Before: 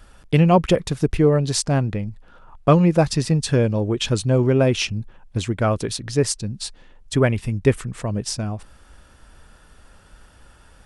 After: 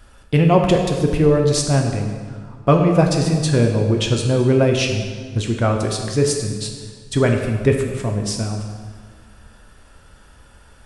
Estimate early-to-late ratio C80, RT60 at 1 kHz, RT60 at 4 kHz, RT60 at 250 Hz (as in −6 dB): 6.0 dB, 1.6 s, 1.3 s, 2.0 s